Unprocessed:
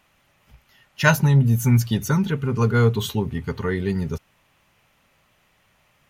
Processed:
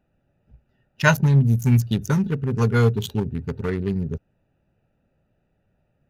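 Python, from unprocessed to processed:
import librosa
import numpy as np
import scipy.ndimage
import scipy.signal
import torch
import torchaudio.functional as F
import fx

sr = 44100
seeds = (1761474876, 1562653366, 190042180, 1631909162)

y = fx.wiener(x, sr, points=41)
y = fx.high_shelf(y, sr, hz=4200.0, db=7.5, at=(1.45, 3.7))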